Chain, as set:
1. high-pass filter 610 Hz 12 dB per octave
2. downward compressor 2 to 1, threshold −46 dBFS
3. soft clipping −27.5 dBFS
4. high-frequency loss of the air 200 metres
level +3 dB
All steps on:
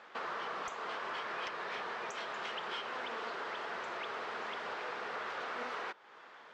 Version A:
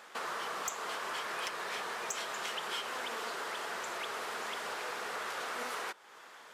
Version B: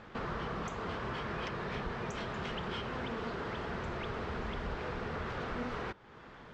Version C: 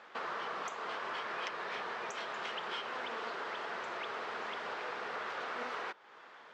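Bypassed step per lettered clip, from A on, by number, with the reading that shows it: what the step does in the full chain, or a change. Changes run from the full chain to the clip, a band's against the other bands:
4, 8 kHz band +14.5 dB
1, 125 Hz band +25.0 dB
3, distortion level −25 dB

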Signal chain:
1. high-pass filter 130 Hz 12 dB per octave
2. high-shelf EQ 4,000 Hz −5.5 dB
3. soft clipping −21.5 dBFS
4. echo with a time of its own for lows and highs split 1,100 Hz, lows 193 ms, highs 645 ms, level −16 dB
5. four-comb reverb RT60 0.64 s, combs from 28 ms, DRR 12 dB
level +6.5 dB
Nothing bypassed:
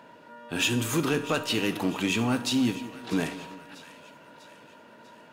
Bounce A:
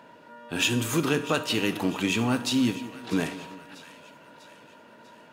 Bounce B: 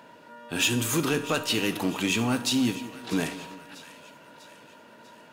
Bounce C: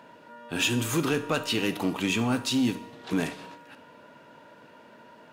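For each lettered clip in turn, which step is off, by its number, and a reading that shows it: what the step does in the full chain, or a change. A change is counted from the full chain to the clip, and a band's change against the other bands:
3, change in crest factor +4.0 dB
2, 8 kHz band +4.0 dB
4, echo-to-direct ratio −10.0 dB to −12.0 dB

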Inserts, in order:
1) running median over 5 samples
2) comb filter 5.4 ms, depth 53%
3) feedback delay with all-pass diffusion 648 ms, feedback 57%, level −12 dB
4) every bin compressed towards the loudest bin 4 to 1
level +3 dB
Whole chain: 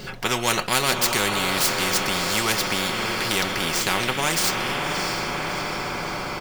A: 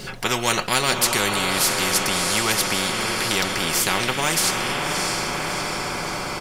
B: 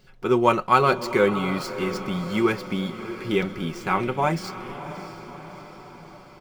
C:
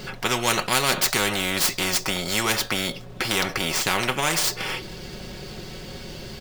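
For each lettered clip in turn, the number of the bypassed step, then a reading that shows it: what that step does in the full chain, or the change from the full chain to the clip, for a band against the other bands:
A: 1, 8 kHz band +3.0 dB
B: 4, 8 kHz band −21.5 dB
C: 3, change in momentary loudness spread +10 LU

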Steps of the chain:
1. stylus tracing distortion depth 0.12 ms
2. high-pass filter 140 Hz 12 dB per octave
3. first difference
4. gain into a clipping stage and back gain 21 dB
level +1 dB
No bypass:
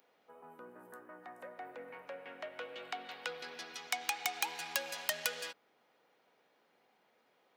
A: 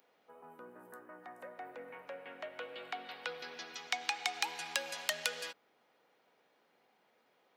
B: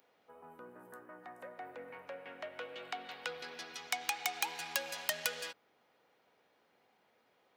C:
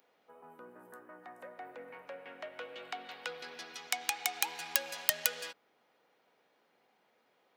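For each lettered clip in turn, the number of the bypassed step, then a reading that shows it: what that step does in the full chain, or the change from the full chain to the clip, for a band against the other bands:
1, 4 kHz band +1.5 dB
2, 125 Hz band +2.0 dB
4, distortion level −6 dB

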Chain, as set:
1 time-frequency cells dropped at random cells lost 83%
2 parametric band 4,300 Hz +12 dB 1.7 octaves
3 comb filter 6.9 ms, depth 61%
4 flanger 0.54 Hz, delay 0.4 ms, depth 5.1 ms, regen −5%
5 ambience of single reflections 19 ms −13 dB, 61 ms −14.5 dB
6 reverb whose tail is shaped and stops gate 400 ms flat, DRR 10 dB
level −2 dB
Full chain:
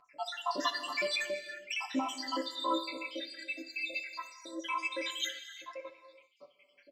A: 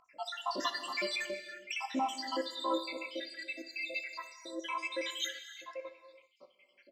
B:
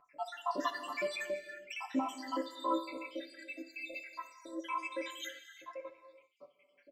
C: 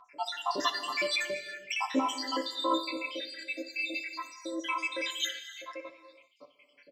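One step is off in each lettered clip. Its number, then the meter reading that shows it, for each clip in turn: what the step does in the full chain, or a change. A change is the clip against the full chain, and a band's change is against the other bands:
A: 3, 500 Hz band +1.5 dB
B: 2, 4 kHz band −9.0 dB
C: 4, change in integrated loudness +3.0 LU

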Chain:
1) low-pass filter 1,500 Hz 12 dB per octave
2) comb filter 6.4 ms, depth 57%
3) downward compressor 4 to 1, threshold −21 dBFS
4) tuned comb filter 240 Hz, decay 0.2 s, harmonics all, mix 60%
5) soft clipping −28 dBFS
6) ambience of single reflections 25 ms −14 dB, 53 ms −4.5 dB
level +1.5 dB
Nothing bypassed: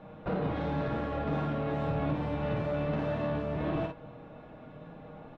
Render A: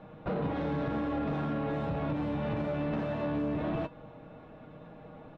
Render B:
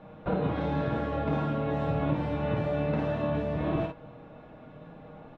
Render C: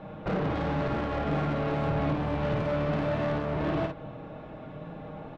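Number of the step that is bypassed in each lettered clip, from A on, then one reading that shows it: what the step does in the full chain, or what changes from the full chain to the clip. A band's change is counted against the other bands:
6, change in momentary loudness spread +1 LU
5, distortion level −14 dB
4, 4 kHz band +2.5 dB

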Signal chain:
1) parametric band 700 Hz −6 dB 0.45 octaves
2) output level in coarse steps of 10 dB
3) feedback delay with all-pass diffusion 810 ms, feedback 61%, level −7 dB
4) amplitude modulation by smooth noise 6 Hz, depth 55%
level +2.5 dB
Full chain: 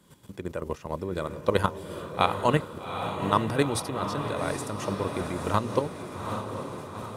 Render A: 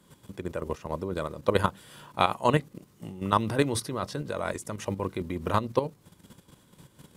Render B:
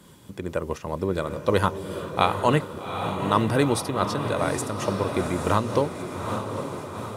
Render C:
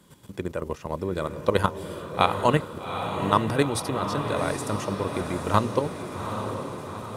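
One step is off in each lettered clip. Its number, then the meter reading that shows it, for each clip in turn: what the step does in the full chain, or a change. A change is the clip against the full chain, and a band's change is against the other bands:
3, change in momentary loudness spread +3 LU
2, change in crest factor −2.0 dB
4, change in integrated loudness +2.5 LU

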